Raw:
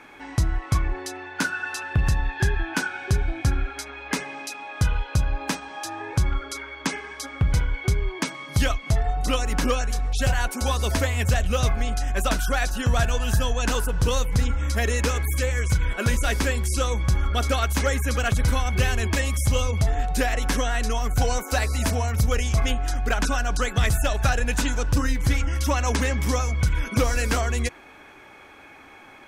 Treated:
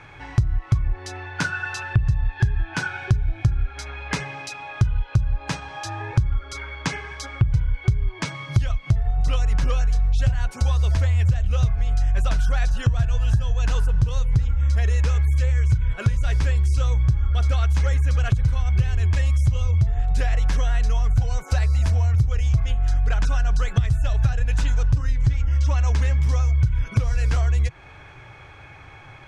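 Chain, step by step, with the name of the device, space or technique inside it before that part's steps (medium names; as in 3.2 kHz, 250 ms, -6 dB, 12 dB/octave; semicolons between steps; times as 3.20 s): jukebox (low-pass 6.5 kHz 12 dB/octave; resonant low shelf 170 Hz +11 dB, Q 3; compression 5:1, threshold -19 dBFS, peak gain reduction 17 dB); 25.13–25.75 s: steep low-pass 8.6 kHz 48 dB/octave; trim +1.5 dB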